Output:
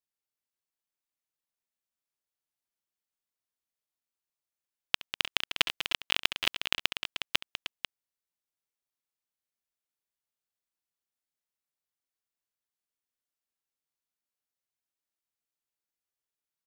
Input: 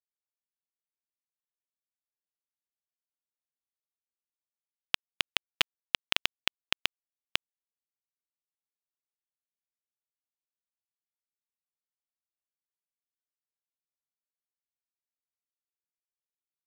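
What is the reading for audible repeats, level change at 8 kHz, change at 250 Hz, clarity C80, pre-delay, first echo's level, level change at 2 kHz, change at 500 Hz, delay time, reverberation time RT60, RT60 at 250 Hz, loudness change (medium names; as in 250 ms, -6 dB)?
4, +2.0 dB, +2.5 dB, no reverb, no reverb, -19.0 dB, +2.0 dB, +2.0 dB, 69 ms, no reverb, no reverb, +2.0 dB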